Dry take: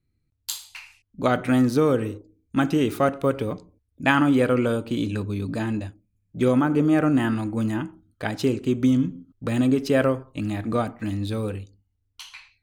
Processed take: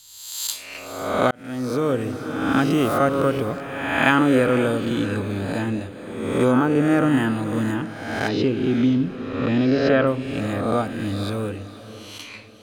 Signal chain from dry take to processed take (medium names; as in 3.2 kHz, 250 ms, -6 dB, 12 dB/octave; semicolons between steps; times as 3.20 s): reverse spectral sustain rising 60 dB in 1.09 s; 8.28–10.07 s: low-pass 4.6 kHz 24 dB/octave; echo that smears into a reverb 510 ms, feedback 43%, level -14 dB; 1.31–2.11 s: fade in